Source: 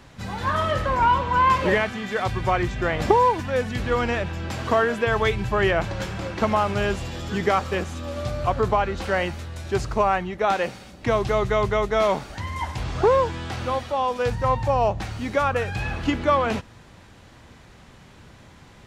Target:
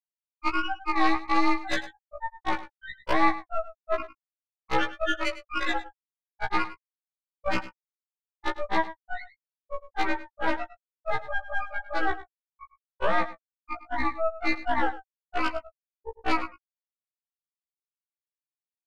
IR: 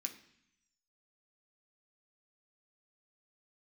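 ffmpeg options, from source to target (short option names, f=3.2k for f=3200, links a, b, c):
-af "aeval=exprs='val(0)*sin(2*PI*160*n/s)':c=same,highpass=600,highshelf=f=2.4k:g=8.5,afftfilt=real='re*gte(hypot(re,im),0.355)':imag='im*gte(hypot(re,im),0.355)':win_size=1024:overlap=0.75,acompressor=threshold=-29dB:ratio=4,aexciter=amount=14.7:drive=4.8:freq=4.6k,acontrast=61,aresample=16000,aeval=exprs='clip(val(0),-1,0.0708)':c=same,aresample=44100,aeval=exprs='0.178*(cos(1*acos(clip(val(0)/0.178,-1,1)))-cos(1*PI/2))+0.0708*(cos(4*acos(clip(val(0)/0.178,-1,1)))-cos(4*PI/2))':c=same,aecho=1:1:103:0.168,afftfilt=real='re*1.73*eq(mod(b,3),0)':imag='im*1.73*eq(mod(b,3),0)':win_size=2048:overlap=0.75"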